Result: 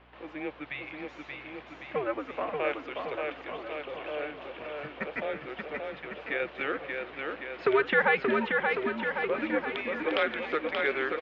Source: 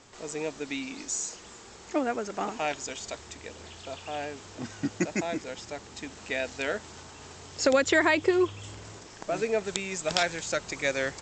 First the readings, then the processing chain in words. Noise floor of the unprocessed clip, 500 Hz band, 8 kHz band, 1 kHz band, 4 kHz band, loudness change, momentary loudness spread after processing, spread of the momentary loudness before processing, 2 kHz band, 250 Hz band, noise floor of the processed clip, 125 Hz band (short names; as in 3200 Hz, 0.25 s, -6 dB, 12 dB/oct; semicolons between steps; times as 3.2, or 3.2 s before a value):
-48 dBFS, -0.5 dB, under -35 dB, +0.5 dB, -5.5 dB, -1.5 dB, 13 LU, 19 LU, +1.5 dB, -4.0 dB, -49 dBFS, -7.0 dB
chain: mistuned SSB -140 Hz 490–3200 Hz; bouncing-ball echo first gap 0.58 s, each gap 0.9×, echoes 5; hum 60 Hz, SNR 29 dB; warbling echo 0.35 s, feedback 71%, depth 180 cents, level -20 dB